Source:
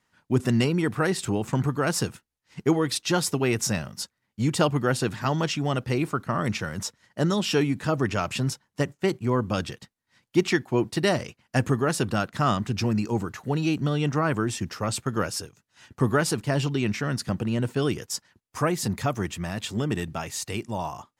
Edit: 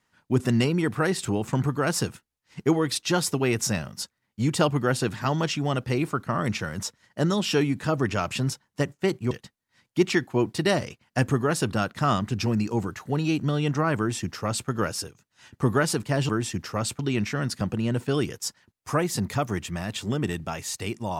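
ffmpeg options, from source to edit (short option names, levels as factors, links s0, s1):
-filter_complex "[0:a]asplit=4[s0][s1][s2][s3];[s0]atrim=end=9.312[s4];[s1]atrim=start=9.688:end=16.672[s5];[s2]atrim=start=14.358:end=15.062[s6];[s3]atrim=start=16.668[s7];[s4][s5]acrossfade=d=0.004:c1=hsin:c2=hsin[s8];[s8][s6]acrossfade=d=0.004:c1=hsin:c2=hsin[s9];[s9][s7]acrossfade=d=0.004:c1=hsin:c2=hsin"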